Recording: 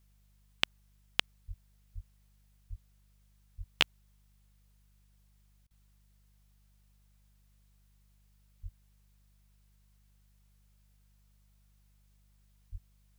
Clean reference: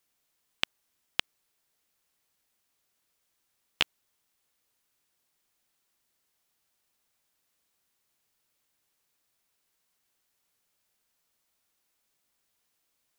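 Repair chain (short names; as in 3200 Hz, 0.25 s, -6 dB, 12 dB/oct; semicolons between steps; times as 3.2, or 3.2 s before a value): de-hum 50 Hz, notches 4; de-plosive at 1.47/1.94/2.69/3.57/8.62/12.71; interpolate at 5.67, 35 ms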